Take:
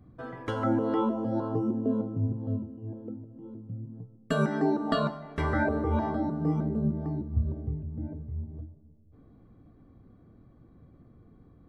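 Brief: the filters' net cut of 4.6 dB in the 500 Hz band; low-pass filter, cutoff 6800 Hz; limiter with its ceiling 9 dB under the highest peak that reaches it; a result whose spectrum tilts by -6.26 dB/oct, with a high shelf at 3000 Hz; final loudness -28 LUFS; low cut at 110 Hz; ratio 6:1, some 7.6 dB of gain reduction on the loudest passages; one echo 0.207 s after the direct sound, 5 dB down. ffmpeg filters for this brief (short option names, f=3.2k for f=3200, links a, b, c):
-af "highpass=110,lowpass=6.8k,equalizer=f=500:t=o:g=-6,highshelf=f=3k:g=-4.5,acompressor=threshold=-32dB:ratio=6,alimiter=level_in=6.5dB:limit=-24dB:level=0:latency=1,volume=-6.5dB,aecho=1:1:207:0.562,volume=11.5dB"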